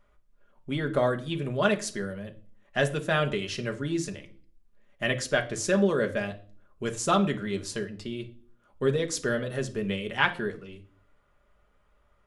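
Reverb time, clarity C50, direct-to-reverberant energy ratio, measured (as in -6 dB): 0.45 s, 15.0 dB, 4.0 dB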